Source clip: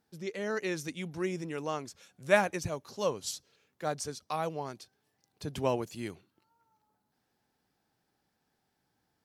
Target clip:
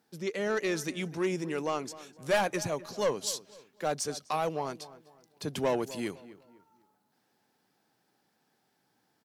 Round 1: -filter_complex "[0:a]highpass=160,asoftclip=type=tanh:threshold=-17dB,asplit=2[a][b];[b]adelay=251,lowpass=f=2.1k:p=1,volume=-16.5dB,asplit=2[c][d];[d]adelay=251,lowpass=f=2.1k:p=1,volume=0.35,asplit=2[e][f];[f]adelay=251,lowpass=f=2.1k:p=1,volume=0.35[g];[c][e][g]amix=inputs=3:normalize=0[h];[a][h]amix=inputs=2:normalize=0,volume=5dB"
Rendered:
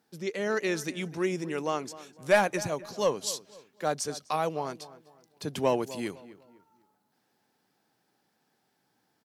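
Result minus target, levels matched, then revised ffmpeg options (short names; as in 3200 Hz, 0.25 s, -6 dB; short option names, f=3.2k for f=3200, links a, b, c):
soft clip: distortion -7 dB
-filter_complex "[0:a]highpass=160,asoftclip=type=tanh:threshold=-26dB,asplit=2[a][b];[b]adelay=251,lowpass=f=2.1k:p=1,volume=-16.5dB,asplit=2[c][d];[d]adelay=251,lowpass=f=2.1k:p=1,volume=0.35,asplit=2[e][f];[f]adelay=251,lowpass=f=2.1k:p=1,volume=0.35[g];[c][e][g]amix=inputs=3:normalize=0[h];[a][h]amix=inputs=2:normalize=0,volume=5dB"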